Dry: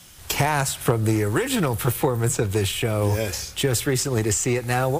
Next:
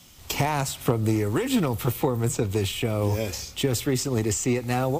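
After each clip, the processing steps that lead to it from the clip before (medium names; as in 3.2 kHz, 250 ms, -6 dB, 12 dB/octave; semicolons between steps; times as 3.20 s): graphic EQ with 31 bands 250 Hz +7 dB, 1.6 kHz -8 dB, 10 kHz -9 dB; trim -3 dB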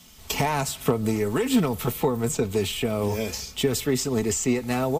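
comb 4.6 ms, depth 48%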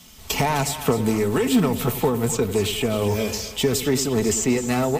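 in parallel at -6.5 dB: overload inside the chain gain 21 dB; on the sum: two-band feedback delay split 600 Hz, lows 96 ms, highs 257 ms, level -11.5 dB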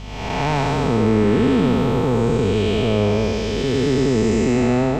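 spectral blur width 400 ms; hum 50 Hz, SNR 16 dB; distance through air 160 m; trim +7.5 dB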